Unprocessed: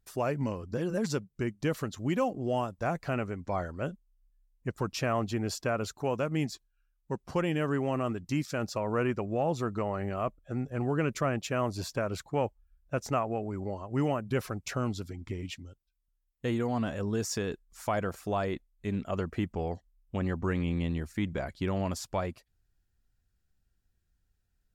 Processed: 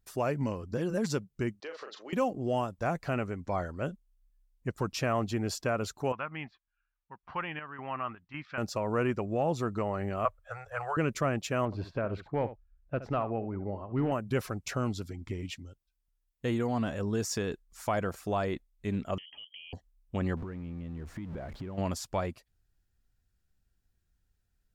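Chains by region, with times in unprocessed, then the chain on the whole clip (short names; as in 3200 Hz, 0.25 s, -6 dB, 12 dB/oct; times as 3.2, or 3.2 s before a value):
1.6–2.13 Chebyshev band-pass 440–4900 Hz, order 3 + doubler 38 ms -6 dB + compressor 3:1, threshold -40 dBFS
6.12–8.58 LPF 2900 Hz 24 dB/oct + resonant low shelf 680 Hz -11.5 dB, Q 1.5 + chopper 1.8 Hz, depth 60%, duty 65%
10.25–10.97 elliptic band-stop 100–520 Hz + bell 1300 Hz +11.5 dB 1.3 oct
11.65–14.12 overloaded stage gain 21.5 dB + air absorption 370 m + echo 70 ms -13.5 dB
19.18–19.73 compressor 16:1, threshold -39 dBFS + fixed phaser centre 480 Hz, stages 6 + inverted band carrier 3200 Hz
20.37–21.78 zero-crossing step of -38 dBFS + LPF 1100 Hz 6 dB/oct + compressor 10:1, threshold -35 dBFS
whole clip: dry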